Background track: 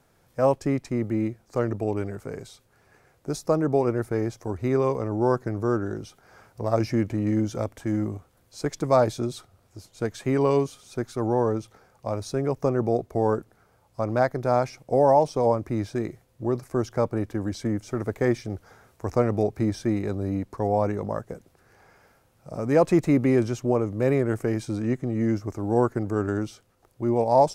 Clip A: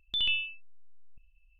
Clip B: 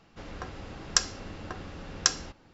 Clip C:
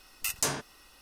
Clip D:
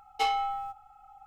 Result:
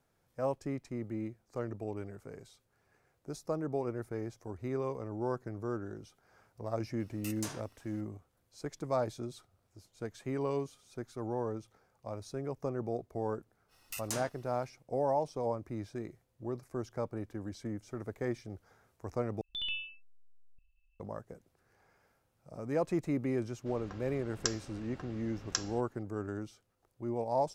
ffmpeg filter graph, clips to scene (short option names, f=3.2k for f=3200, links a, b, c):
-filter_complex "[3:a]asplit=2[a][b];[0:a]volume=-12.5dB[c];[a]asoftclip=type=tanh:threshold=-13dB[d];[c]asplit=2[e][f];[e]atrim=end=19.414[g];[1:a]atrim=end=1.59,asetpts=PTS-STARTPTS,volume=-8.5dB[h];[f]atrim=start=20.996[i];[d]atrim=end=1.01,asetpts=PTS-STARTPTS,volume=-12.5dB,afade=t=in:d=0.004:c=hsin,afade=t=out:st=1.006:d=0.004:c=hsin,adelay=7000[j];[b]atrim=end=1.01,asetpts=PTS-STARTPTS,volume=-10dB,afade=t=in:d=0.05,afade=t=out:st=0.96:d=0.05,adelay=13680[k];[2:a]atrim=end=2.53,asetpts=PTS-STARTPTS,volume=-10dB,afade=t=in:d=0.004:c=hsin,afade=t=out:st=2.526:d=0.004:c=hsin,adelay=23490[l];[g][h]acrossfade=d=0.004:c1=hsin:c2=hsin[m];[m][i]acrossfade=d=0.004:c1=hsin:c2=hsin[n];[n][j][k][l]amix=inputs=4:normalize=0"